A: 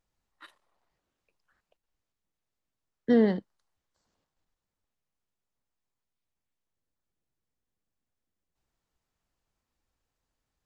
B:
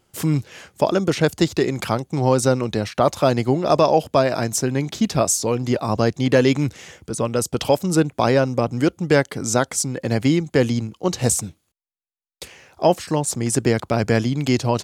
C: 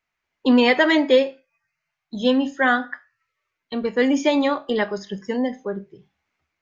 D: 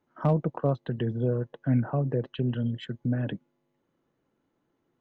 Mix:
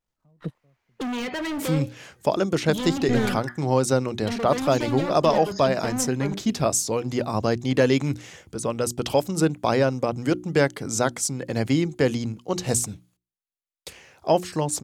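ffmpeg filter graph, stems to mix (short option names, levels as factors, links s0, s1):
-filter_complex "[0:a]aeval=exprs='if(lt(val(0),0),0.447*val(0),val(0))':c=same,volume=1.06,asplit=2[s0][s1];[1:a]bandreject=f=60:t=h:w=6,bandreject=f=120:t=h:w=6,bandreject=f=180:t=h:w=6,bandreject=f=240:t=h:w=6,bandreject=f=300:t=h:w=6,bandreject=f=360:t=h:w=6,adelay=1450,volume=0.668[s2];[2:a]acrossover=split=220[s3][s4];[s4]acompressor=threshold=0.0501:ratio=4[s5];[s3][s5]amix=inputs=2:normalize=0,asoftclip=type=hard:threshold=0.0335,adelay=550,volume=1.33[s6];[3:a]lowshelf=f=280:g=10.5,volume=0.355[s7];[s1]apad=whole_len=220682[s8];[s7][s8]sidechaingate=range=0.0178:threshold=0.00158:ratio=16:detection=peak[s9];[s0][s2][s6][s9]amix=inputs=4:normalize=0"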